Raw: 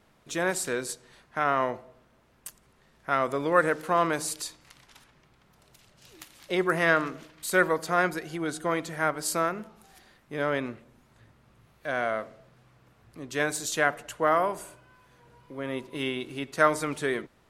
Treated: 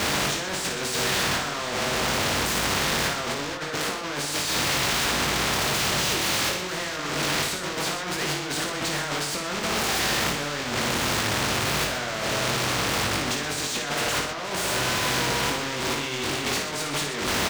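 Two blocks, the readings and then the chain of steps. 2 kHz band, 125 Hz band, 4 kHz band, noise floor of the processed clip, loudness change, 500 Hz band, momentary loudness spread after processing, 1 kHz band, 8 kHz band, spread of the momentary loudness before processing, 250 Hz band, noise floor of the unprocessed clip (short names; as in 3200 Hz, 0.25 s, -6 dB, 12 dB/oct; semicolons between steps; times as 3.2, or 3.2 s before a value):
+4.5 dB, +8.0 dB, +16.5 dB, -31 dBFS, +3.5 dB, -1.0 dB, 5 LU, +1.5 dB, +10.5 dB, 16 LU, +3.0 dB, -63 dBFS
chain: zero-crossing step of -23 dBFS; HPF 74 Hz; in parallel at +2 dB: limiter -18 dBFS, peak gain reduction 11.5 dB; on the sum: negative-ratio compressor -22 dBFS, ratio -0.5; high shelf 6100 Hz +9.5 dB; flange 0.58 Hz, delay 3.3 ms, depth 9 ms, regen -70%; air absorption 170 m; doubler 21 ms -4.5 dB; tapped delay 55/123/473 ms -7/-13.5/-17 dB; spectral compressor 2:1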